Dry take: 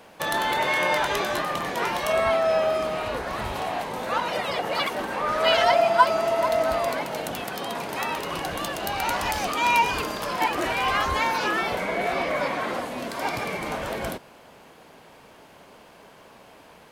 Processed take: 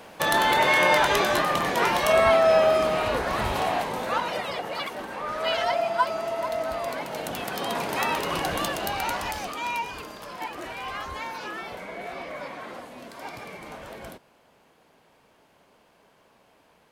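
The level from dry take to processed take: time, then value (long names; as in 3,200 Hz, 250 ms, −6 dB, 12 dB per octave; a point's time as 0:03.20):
0:03.68 +3.5 dB
0:04.79 −6 dB
0:06.74 −6 dB
0:07.74 +2.5 dB
0:08.61 +2.5 dB
0:09.86 −10.5 dB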